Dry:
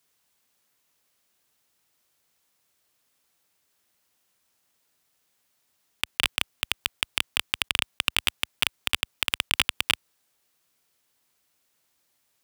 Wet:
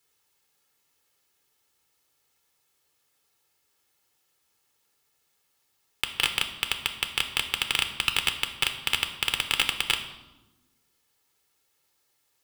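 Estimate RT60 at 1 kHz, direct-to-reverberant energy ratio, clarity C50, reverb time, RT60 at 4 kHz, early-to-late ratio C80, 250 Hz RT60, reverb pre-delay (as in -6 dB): 1.0 s, 6.0 dB, 10.0 dB, 1.1 s, 0.80 s, 12.0 dB, 1.6 s, 7 ms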